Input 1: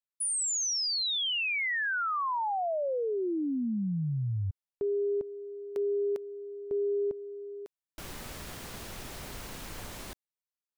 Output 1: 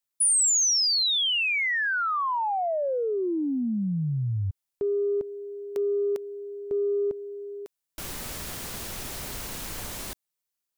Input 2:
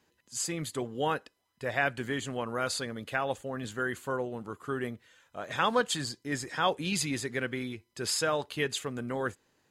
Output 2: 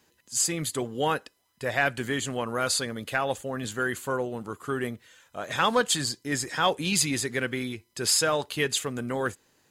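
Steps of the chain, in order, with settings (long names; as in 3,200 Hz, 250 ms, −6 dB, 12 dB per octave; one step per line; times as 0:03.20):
high-shelf EQ 5,000 Hz +7.5 dB
in parallel at −5 dB: soft clipping −20.5 dBFS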